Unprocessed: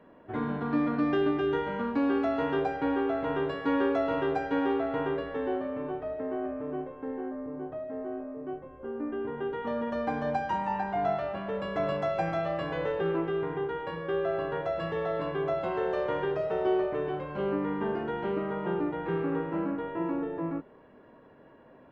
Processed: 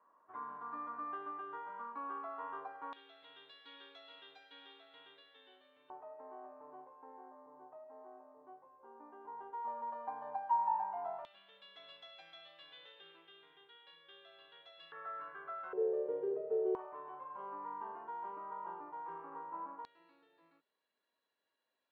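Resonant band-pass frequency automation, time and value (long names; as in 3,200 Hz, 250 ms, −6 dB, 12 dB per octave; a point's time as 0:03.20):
resonant band-pass, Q 8.1
1,100 Hz
from 0:02.93 3,600 Hz
from 0:05.90 930 Hz
from 0:11.25 3,500 Hz
from 0:14.92 1,400 Hz
from 0:15.73 440 Hz
from 0:16.75 1,000 Hz
from 0:19.85 4,200 Hz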